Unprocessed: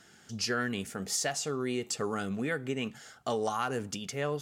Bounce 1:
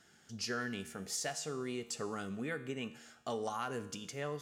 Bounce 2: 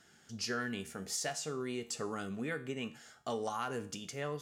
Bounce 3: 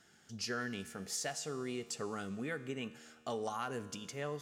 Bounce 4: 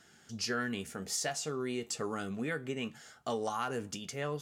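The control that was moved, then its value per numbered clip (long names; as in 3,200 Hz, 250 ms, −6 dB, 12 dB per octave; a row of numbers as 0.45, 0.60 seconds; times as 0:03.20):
tuned comb filter, decay: 0.94, 0.43, 2, 0.15 seconds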